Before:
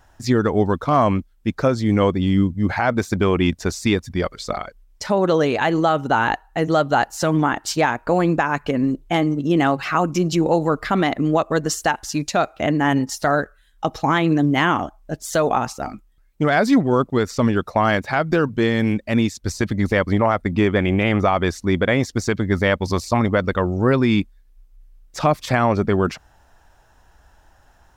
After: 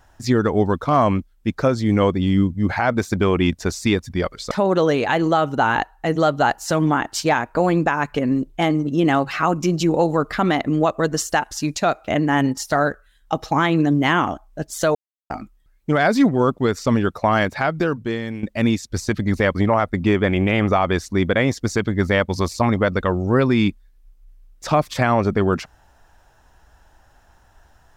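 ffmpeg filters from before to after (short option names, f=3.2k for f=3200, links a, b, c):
-filter_complex "[0:a]asplit=5[a][b][c][d][e];[a]atrim=end=4.512[f];[b]atrim=start=5.028:end=15.47,asetpts=PTS-STARTPTS,afade=t=out:st=10.438:d=0.004:c=hsin[g];[c]atrim=start=15.47:end=15.82,asetpts=PTS-STARTPTS,volume=0[h];[d]atrim=start=15.82:end=18.95,asetpts=PTS-STARTPTS,afade=t=in:d=0.004:c=hsin,afade=t=out:st=2.27:d=0.86:silence=0.223872[i];[e]atrim=start=18.95,asetpts=PTS-STARTPTS,afade=t=in:d=0.004:c=hsin:silence=0.223872[j];[g][h][i][j]concat=n=4:v=0:a=1[k];[f][k]acrossfade=d=0.004:c1=hsin:c2=hsin"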